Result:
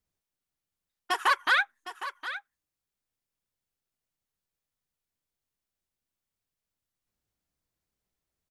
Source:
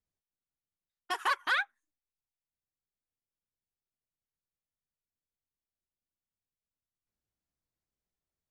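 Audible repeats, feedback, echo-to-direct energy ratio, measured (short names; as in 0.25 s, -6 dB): 1, no steady repeat, -12.5 dB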